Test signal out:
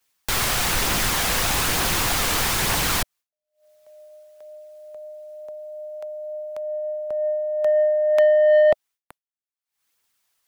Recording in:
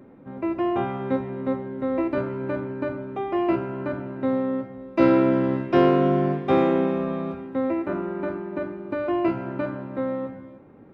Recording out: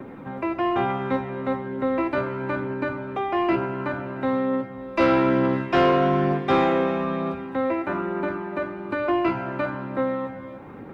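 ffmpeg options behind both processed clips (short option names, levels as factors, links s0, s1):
-filter_complex "[0:a]acrossover=split=280|620[s0][s1][s2];[s2]acontrast=85[s3];[s0][s1][s3]amix=inputs=3:normalize=0,equalizer=f=610:w=7.4:g=-4,aphaser=in_gain=1:out_gain=1:delay=1.9:decay=0.22:speed=1.1:type=triangular,asplit=2[s4][s5];[s5]acompressor=mode=upward:threshold=0.0631:ratio=2.5,volume=1.26[s6];[s4][s6]amix=inputs=2:normalize=0,asoftclip=type=tanh:threshold=0.668,agate=range=0.0224:threshold=0.02:ratio=3:detection=peak,volume=0.422"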